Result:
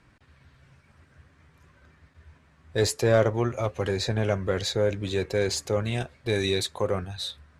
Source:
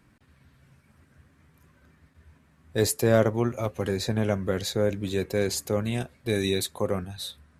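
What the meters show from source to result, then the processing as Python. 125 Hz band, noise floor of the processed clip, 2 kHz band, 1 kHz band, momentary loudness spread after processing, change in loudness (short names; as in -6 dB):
+1.0 dB, -61 dBFS, +2.0 dB, +1.5 dB, 8 LU, +0.5 dB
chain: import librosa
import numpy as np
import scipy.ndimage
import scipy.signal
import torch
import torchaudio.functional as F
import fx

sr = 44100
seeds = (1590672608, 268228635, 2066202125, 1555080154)

p1 = scipy.signal.sosfilt(scipy.signal.butter(2, 6700.0, 'lowpass', fs=sr, output='sos'), x)
p2 = fx.peak_eq(p1, sr, hz=220.0, db=-7.0, octaves=1.2)
p3 = 10.0 ** (-25.5 / 20.0) * np.tanh(p2 / 10.0 ** (-25.5 / 20.0))
y = p2 + (p3 * 10.0 ** (-5.0 / 20.0))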